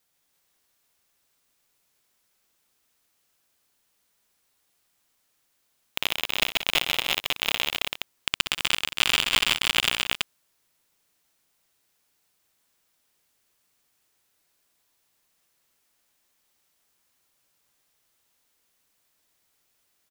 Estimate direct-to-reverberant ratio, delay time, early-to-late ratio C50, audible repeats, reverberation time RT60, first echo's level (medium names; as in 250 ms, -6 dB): no reverb, 61 ms, no reverb, 5, no reverb, -13.5 dB